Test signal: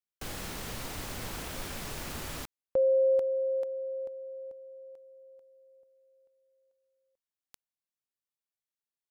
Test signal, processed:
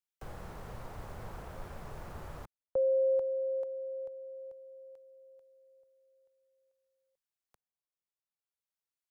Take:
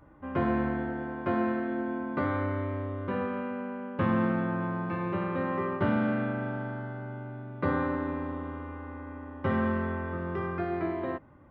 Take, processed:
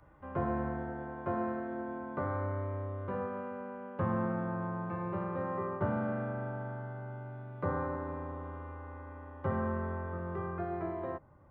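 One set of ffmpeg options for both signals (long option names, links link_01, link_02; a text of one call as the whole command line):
ffmpeg -i in.wav -filter_complex "[0:a]equalizer=frequency=270:width_type=o:width=0.79:gain=-9.5,acrossover=split=160|1400[link_01][link_02][link_03];[link_03]acompressor=threshold=-58dB:ratio=4:attack=1:release=926:detection=rms[link_04];[link_01][link_02][link_04]amix=inputs=3:normalize=0,volume=-2dB" out.wav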